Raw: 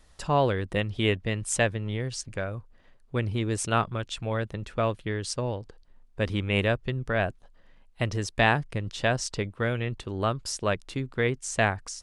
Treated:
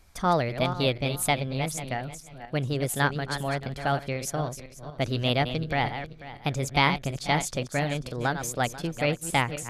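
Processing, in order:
feedback delay that plays each chunk backwards 304 ms, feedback 44%, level −9 dB
speed change +24%

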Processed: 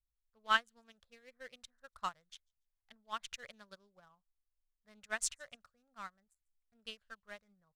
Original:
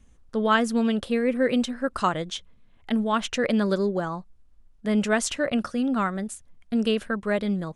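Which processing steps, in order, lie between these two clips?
adaptive Wiener filter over 15 samples
guitar amp tone stack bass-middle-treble 10-0-10
delay with a high-pass on its return 144 ms, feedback 30%, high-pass 5,300 Hz, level −19 dB
in parallel at −6 dB: soft clipping −25 dBFS, distortion −12 dB
on the sum: expander for the loud parts 2.5 to 1, over −42 dBFS
level −1.5 dB

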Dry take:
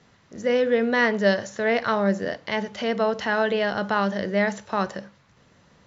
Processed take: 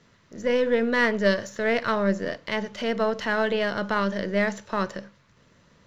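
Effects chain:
gain on one half-wave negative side −3 dB
notch filter 780 Hz, Q 5.1

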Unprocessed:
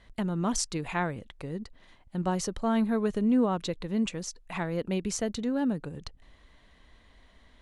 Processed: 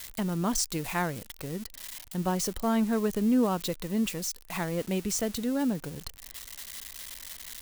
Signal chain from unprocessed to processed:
spike at every zero crossing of −29 dBFS

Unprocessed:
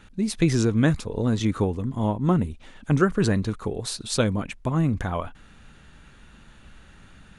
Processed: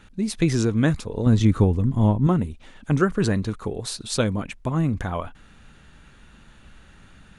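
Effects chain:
0:01.26–0:02.27: low-shelf EQ 200 Hz +11 dB

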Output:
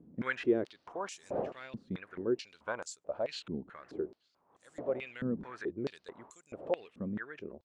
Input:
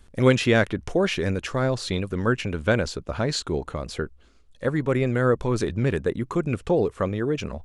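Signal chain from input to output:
wind on the microphone 320 Hz −33 dBFS
band-pass on a step sequencer 4.6 Hz 220–7,400 Hz
level −2.5 dB

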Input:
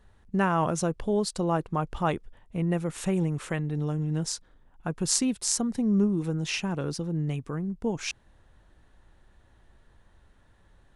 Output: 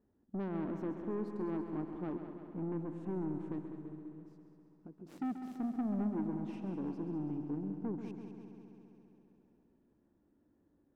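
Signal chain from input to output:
phase distortion by the signal itself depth 0.3 ms
0:03.59–0:05.07: downward compressor 8 to 1, threshold −41 dBFS, peak gain reduction 16.5 dB
resonant band-pass 290 Hz, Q 3.5
soft clipping −34.5 dBFS, distortion −10 dB
echo machine with several playback heads 67 ms, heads second and third, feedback 70%, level −10 dB
level +1 dB

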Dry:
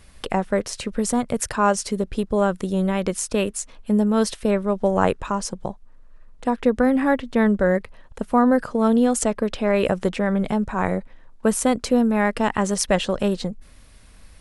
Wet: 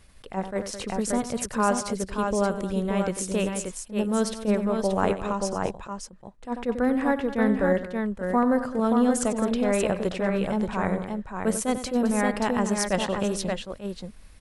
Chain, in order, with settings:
multi-tap delay 93/214/579 ms −12.5/−14.5/−5 dB
level that may rise only so fast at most 250 dB per second
level −5 dB

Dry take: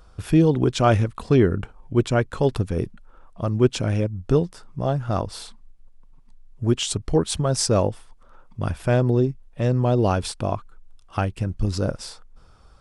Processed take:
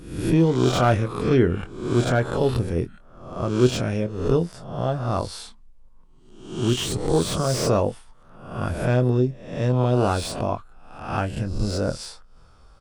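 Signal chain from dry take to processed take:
peak hold with a rise ahead of every peak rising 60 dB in 0.70 s
double-tracking delay 24 ms −10 dB
slew-rate limiting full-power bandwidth 300 Hz
level −2.5 dB

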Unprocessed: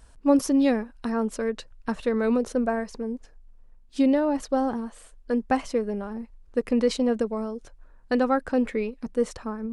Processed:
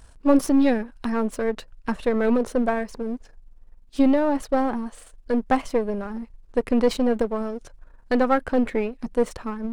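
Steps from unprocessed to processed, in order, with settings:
gain on one half-wave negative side −7 dB
dynamic equaliser 5,900 Hz, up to −5 dB, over −53 dBFS, Q 0.93
level +5.5 dB

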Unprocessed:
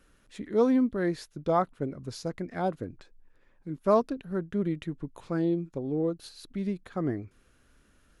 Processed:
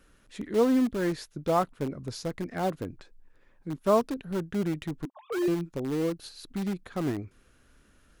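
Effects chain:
0:05.05–0:05.48: three sine waves on the formant tracks
in parallel at −11.5 dB: wrap-around overflow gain 27 dB

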